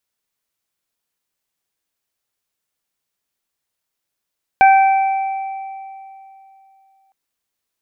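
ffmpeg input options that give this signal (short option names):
-f lavfi -i "aevalsrc='0.531*pow(10,-3*t/2.94)*sin(2*PI*776*t)+0.158*pow(10,-3*t/1.07)*sin(2*PI*1552*t)+0.15*pow(10,-3*t/2.3)*sin(2*PI*2328*t)':d=2.51:s=44100"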